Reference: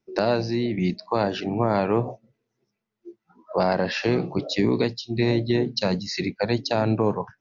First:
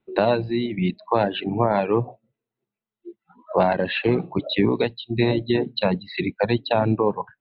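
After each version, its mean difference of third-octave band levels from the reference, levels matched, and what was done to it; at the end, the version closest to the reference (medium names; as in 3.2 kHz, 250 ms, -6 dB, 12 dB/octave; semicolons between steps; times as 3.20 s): 4.0 dB: reverb removal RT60 1.4 s; rippled Chebyshev low-pass 4 kHz, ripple 3 dB; dynamic bell 1.3 kHz, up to -6 dB, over -51 dBFS, Q 7.2; trim +5.5 dB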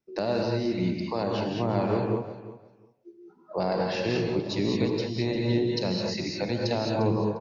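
7.0 dB: dynamic bell 1.5 kHz, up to -5 dB, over -39 dBFS, Q 1.2; on a send: feedback delay 351 ms, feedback 17%, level -15 dB; on the sum: gated-style reverb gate 240 ms rising, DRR 0 dB; trim -6 dB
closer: first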